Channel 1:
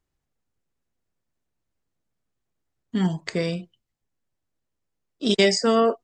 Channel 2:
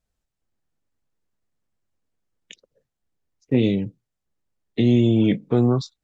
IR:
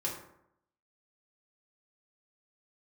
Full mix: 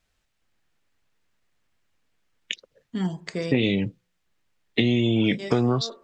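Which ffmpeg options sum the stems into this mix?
-filter_complex "[0:a]volume=0.562,asplit=2[s0][s1];[s1]volume=0.0891[s2];[1:a]equalizer=f=2400:t=o:w=2.6:g=11.5,volume=1.41,asplit=2[s3][s4];[s4]apad=whole_len=266227[s5];[s0][s5]sidechaincompress=threshold=0.0251:ratio=12:attack=16:release=204[s6];[2:a]atrim=start_sample=2205[s7];[s2][s7]afir=irnorm=-1:irlink=0[s8];[s6][s3][s8]amix=inputs=3:normalize=0,acompressor=threshold=0.126:ratio=6"

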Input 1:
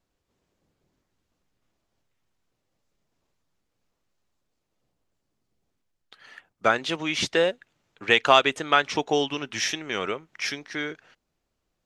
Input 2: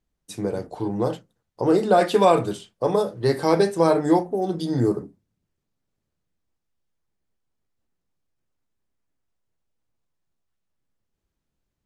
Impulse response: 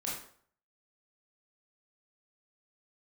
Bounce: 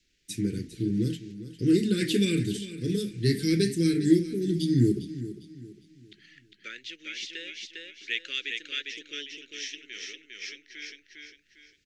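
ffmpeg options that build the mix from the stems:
-filter_complex "[0:a]highpass=f=610:t=q:w=4.9,acompressor=mode=upward:threshold=0.02:ratio=2.5,lowpass=f=6800:w=0.5412,lowpass=f=6800:w=1.3066,volume=1.19,asplit=2[s0][s1];[s1]volume=0.188[s2];[1:a]volume=1.19,asplit=3[s3][s4][s5];[s4]volume=0.2[s6];[s5]apad=whole_len=522824[s7];[s0][s7]sidechaingate=range=0.282:threshold=0.00355:ratio=16:detection=peak[s8];[s2][s6]amix=inputs=2:normalize=0,aecho=0:1:403|806|1209|1612|2015:1|0.35|0.122|0.0429|0.015[s9];[s8][s3][s9]amix=inputs=3:normalize=0,adynamicequalizer=threshold=0.00562:dfrequency=1100:dqfactor=1.5:tfrequency=1100:tqfactor=1.5:attack=5:release=100:ratio=0.375:range=3.5:mode=cutabove:tftype=bell,asuperstop=centerf=800:order=8:qfactor=0.52"

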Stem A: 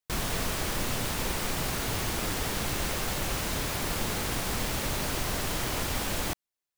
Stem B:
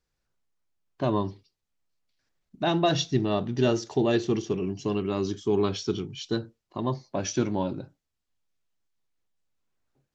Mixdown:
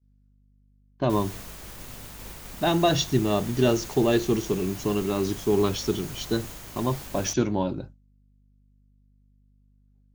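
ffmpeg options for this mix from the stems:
-filter_complex "[0:a]highshelf=f=12000:g=9,adelay=1000,volume=0.266[s0];[1:a]aeval=exprs='val(0)+0.00447*(sin(2*PI*50*n/s)+sin(2*PI*2*50*n/s)/2+sin(2*PI*3*50*n/s)/3+sin(2*PI*4*50*n/s)/4+sin(2*PI*5*50*n/s)/5)':c=same,volume=1.26[s1];[s0][s1]amix=inputs=2:normalize=0,agate=range=0.0224:threshold=0.0158:ratio=3:detection=peak,adynamicequalizer=threshold=0.00141:dfrequency=6600:dqfactor=7.5:tfrequency=6600:tqfactor=7.5:attack=5:release=100:ratio=0.375:range=3.5:mode=boostabove:tftype=bell"

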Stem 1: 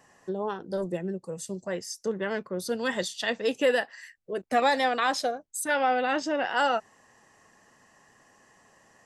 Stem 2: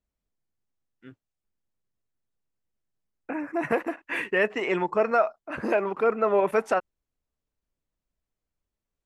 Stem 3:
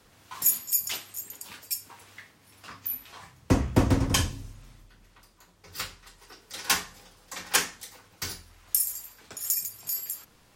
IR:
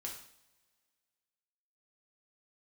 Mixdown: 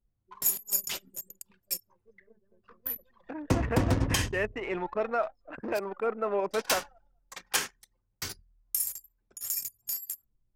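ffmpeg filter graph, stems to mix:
-filter_complex "[0:a]aeval=exprs='0.237*(cos(1*acos(clip(val(0)/0.237,-1,1)))-cos(1*PI/2))+0.0841*(cos(2*acos(clip(val(0)/0.237,-1,1)))-cos(2*PI/2))+0.0133*(cos(3*acos(clip(val(0)/0.237,-1,1)))-cos(3*PI/2))+0.015*(cos(5*acos(clip(val(0)/0.237,-1,1)))-cos(5*PI/2))':c=same,volume=0.126,asplit=2[s0][s1];[s1]volume=0.447[s2];[1:a]volume=0.447,asplit=2[s3][s4];[2:a]volume=1.12,asplit=3[s5][s6][s7];[s5]atrim=end=5.79,asetpts=PTS-STARTPTS,afade=t=out:st=5.786:d=0.004:c=hsin[s8];[s6]atrim=start=5.79:end=6.45,asetpts=PTS-STARTPTS,volume=0[s9];[s7]atrim=start=6.45,asetpts=PTS-STARTPTS,afade=t=in:d=0.004:c=hsin[s10];[s8][s9][s10]concat=n=3:v=0:a=1,asplit=2[s11][s12];[s12]volume=0.211[s13];[s4]apad=whole_len=399427[s14];[s0][s14]sidechaincompress=threshold=0.00794:ratio=8:attack=16:release=334[s15];[s15][s11]amix=inputs=2:normalize=0,aeval=exprs='0.668*(cos(1*acos(clip(val(0)/0.668,-1,1)))-cos(1*PI/2))+0.00422*(cos(6*acos(clip(val(0)/0.668,-1,1)))-cos(6*PI/2))+0.0422*(cos(7*acos(clip(val(0)/0.668,-1,1)))-cos(7*PI/2))':c=same,alimiter=limit=0.211:level=0:latency=1:release=116,volume=1[s16];[3:a]atrim=start_sample=2205[s17];[s13][s17]afir=irnorm=-1:irlink=0[s18];[s2]aecho=0:1:210|420|630|840|1050:1|0.39|0.152|0.0593|0.0231[s19];[s3][s16][s18][s19]amix=inputs=4:normalize=0,anlmdn=1"

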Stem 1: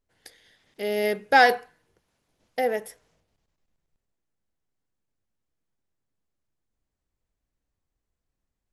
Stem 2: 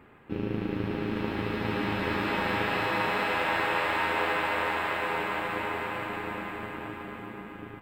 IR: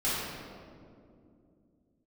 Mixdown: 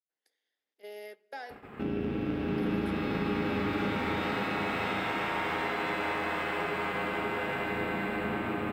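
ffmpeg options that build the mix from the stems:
-filter_complex "[0:a]highpass=f=260:w=0.5412,highpass=f=260:w=1.3066,acrossover=split=330|3300[s0][s1][s2];[s0]acompressor=threshold=0.00355:ratio=4[s3];[s1]acompressor=threshold=0.0398:ratio=4[s4];[s2]acompressor=threshold=0.00631:ratio=4[s5];[s3][s4][s5]amix=inputs=3:normalize=0,volume=0.188,asplit=2[s6][s7];[s7]volume=0.0794[s8];[1:a]aeval=exprs='0.211*(cos(1*acos(clip(val(0)/0.211,-1,1)))-cos(1*PI/2))+0.0119*(cos(6*acos(clip(val(0)/0.211,-1,1)))-cos(6*PI/2))':c=same,acompressor=threshold=0.0158:ratio=6,highpass=49,adelay=1500,volume=1.33,asplit=2[s9][s10];[s10]volume=0.631[s11];[2:a]atrim=start_sample=2205[s12];[s8][s11]amix=inputs=2:normalize=0[s13];[s13][s12]afir=irnorm=-1:irlink=0[s14];[s6][s9][s14]amix=inputs=3:normalize=0,agate=range=0.251:threshold=0.00562:ratio=16:detection=peak,acompressor=threshold=0.0224:ratio=1.5"

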